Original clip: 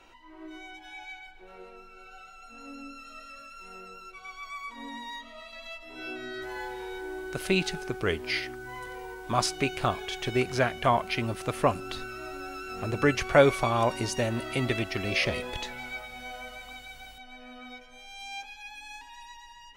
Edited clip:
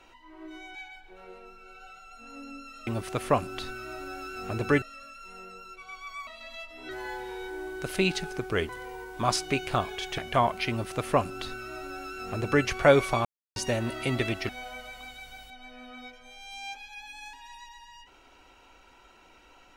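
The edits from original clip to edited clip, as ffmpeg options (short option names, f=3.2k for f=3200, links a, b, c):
-filter_complex "[0:a]asplit=11[a][b][c][d][e][f][g][h][i][j][k];[a]atrim=end=0.752[l];[b]atrim=start=1.058:end=3.182[m];[c]atrim=start=11.198:end=13.152[n];[d]atrim=start=3.178:end=4.632[o];[e]atrim=start=5.388:end=6.012[p];[f]atrim=start=6.398:end=8.202[q];[g]atrim=start=8.788:end=10.282[r];[h]atrim=start=10.678:end=13.75,asetpts=PTS-STARTPTS,afade=t=out:st=3.068:d=0.004:c=hsin[s];[i]atrim=start=13.75:end=14.06,asetpts=PTS-STARTPTS,volume=0[t];[j]atrim=start=14.06:end=14.992,asetpts=PTS-STARTPTS,afade=t=in:d=0.004:c=hsin[u];[k]atrim=start=16.168[v];[l][m]acrossfade=d=0.004:c1=hsin:c2=hsin[w];[w][n]acrossfade=d=0.004:c1=hsin:c2=hsin[x];[x][o]acrossfade=d=0.004:c1=hsin:c2=hsin[y];[y][p]acrossfade=d=0.004:c1=hsin:c2=hsin[z];[z][q]acrossfade=d=0.004:c1=hsin:c2=hsin[aa];[aa][r]acrossfade=d=0.004:c1=hsin:c2=hsin[ab];[s][t][u]concat=n=3:v=0:a=1[ac];[ab][ac]acrossfade=d=0.004:c1=hsin:c2=hsin[ad];[ad][v]acrossfade=d=0.004:c1=hsin:c2=hsin"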